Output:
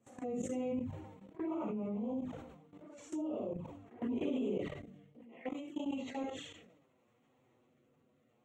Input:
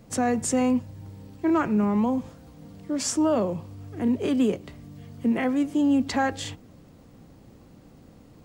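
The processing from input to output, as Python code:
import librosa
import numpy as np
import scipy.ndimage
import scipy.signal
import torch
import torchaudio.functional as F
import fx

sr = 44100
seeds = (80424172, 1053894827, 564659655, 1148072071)

y = fx.phase_scramble(x, sr, seeds[0], window_ms=200)
y = scipy.signal.lfilter(np.full(9, 1.0 / 9), 1.0, y)
y = fx.peak_eq(y, sr, hz=1600.0, db=-6.5, octaves=0.4)
y = fx.env_flanger(y, sr, rest_ms=9.9, full_db=-22.0)
y = fx.highpass(y, sr, hz=fx.steps((0.0, 450.0), (5.21, 1400.0)), slope=6)
y = fx.level_steps(y, sr, step_db=18)
y = fx.rotary(y, sr, hz=0.65)
y = fx.sustainer(y, sr, db_per_s=55.0)
y = y * librosa.db_to_amplitude(1.5)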